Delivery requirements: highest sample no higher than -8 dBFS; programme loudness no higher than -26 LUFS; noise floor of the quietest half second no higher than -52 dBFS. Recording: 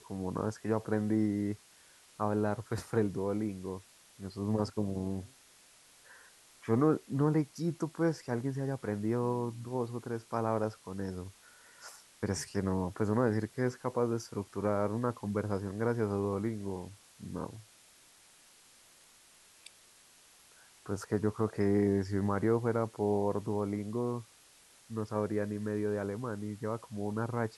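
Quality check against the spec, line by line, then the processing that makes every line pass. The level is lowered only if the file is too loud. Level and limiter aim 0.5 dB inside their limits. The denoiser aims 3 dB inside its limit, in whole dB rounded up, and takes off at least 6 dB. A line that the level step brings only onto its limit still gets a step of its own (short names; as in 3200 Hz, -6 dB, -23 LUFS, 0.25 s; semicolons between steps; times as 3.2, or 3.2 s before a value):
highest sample -16.5 dBFS: OK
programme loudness -34.0 LUFS: OK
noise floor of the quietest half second -61 dBFS: OK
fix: none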